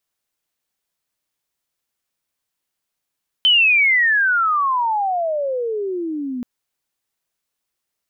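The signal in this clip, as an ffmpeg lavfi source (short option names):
-f lavfi -i "aevalsrc='pow(10,(-10-13*t/2.98)/20)*sin(2*PI*3100*2.98/log(240/3100)*(exp(log(240/3100)*t/2.98)-1))':d=2.98:s=44100"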